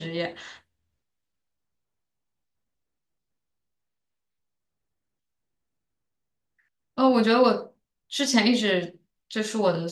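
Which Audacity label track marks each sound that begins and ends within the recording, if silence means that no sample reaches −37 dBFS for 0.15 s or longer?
6.980000	7.660000	sound
8.120000	8.900000	sound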